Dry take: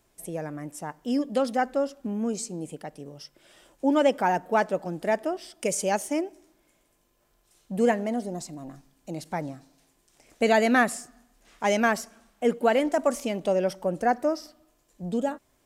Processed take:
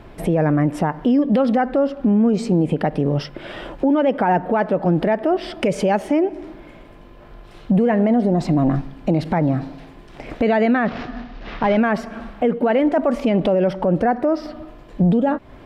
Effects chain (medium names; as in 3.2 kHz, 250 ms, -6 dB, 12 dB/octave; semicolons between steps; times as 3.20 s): 10.85–11.77 s: CVSD coder 32 kbps; distance through air 410 m; compression 4:1, threshold -38 dBFS, peak gain reduction 17 dB; tone controls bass +3 dB, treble +2 dB; loudness maximiser +35.5 dB; trim -9 dB